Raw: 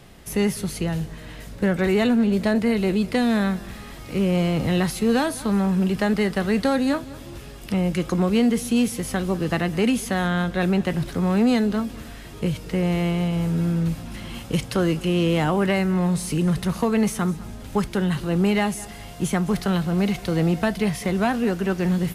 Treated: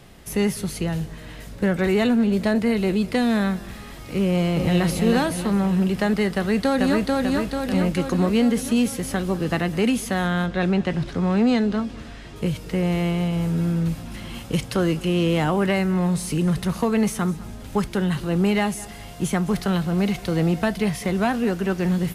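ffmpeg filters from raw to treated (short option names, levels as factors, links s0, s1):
-filter_complex "[0:a]asplit=2[s0][s1];[s1]afade=t=in:st=4.24:d=0.01,afade=t=out:st=4.86:d=0.01,aecho=0:1:320|640|960|1280|1600|1920|2240:0.530884|0.291986|0.160593|0.0883259|0.0485792|0.0267186|0.0146952[s2];[s0][s2]amix=inputs=2:normalize=0,asplit=2[s3][s4];[s4]afade=t=in:st=6.34:d=0.01,afade=t=out:st=7.17:d=0.01,aecho=0:1:440|880|1320|1760|2200|2640|3080|3520|3960:0.841395|0.504837|0.302902|0.181741|0.109045|0.0654269|0.0392561|0.0235537|0.0141322[s5];[s3][s5]amix=inputs=2:normalize=0,asettb=1/sr,asplit=3[s6][s7][s8];[s6]atrim=end=10.464[s9];[s7]atrim=start=10.46:end=12.36,asetpts=PTS-STARTPTS,afade=t=in:d=0.004:c=qsin,afade=t=out:st=1.896:d=0.004:c=qsin,lowpass=6200[s10];[s8]atrim=start=12.356[s11];[s9][s10]acrossfade=d=0.004:c1=hsin:c2=qsin[s12];[s12][s11]acrossfade=d=0.004:c1=qsin:c2=hsin"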